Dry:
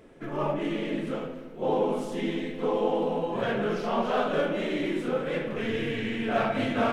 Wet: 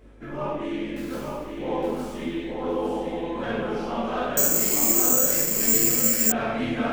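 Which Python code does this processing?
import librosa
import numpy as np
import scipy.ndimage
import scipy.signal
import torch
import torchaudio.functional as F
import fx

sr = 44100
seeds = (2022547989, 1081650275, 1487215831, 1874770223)

p1 = fx.dereverb_blind(x, sr, rt60_s=1.1)
p2 = np.clip(p1, -10.0 ** (-26.5 / 20.0), 10.0 ** (-26.5 / 20.0))
p3 = p1 + (p2 * librosa.db_to_amplitude(-12.0))
p4 = fx.quant_companded(p3, sr, bits=4, at=(0.96, 1.51))
p5 = fx.add_hum(p4, sr, base_hz=50, snr_db=23)
p6 = p5 + fx.echo_feedback(p5, sr, ms=862, feedback_pct=31, wet_db=-5.0, dry=0)
p7 = fx.rev_plate(p6, sr, seeds[0], rt60_s=1.0, hf_ratio=0.95, predelay_ms=0, drr_db=-4.5)
p8 = fx.resample_bad(p7, sr, factor=6, down='filtered', up='zero_stuff', at=(4.37, 6.32))
y = p8 * librosa.db_to_amplitude(-6.5)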